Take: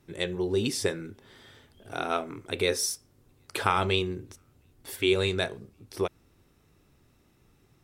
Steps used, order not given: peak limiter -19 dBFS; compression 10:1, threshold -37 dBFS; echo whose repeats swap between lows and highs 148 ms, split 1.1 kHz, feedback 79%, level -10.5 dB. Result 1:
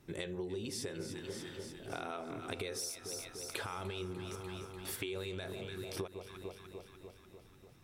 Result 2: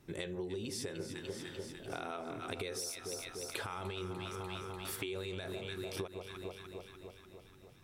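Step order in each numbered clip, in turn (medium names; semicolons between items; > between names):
peak limiter > echo whose repeats swap between lows and highs > compression; echo whose repeats swap between lows and highs > peak limiter > compression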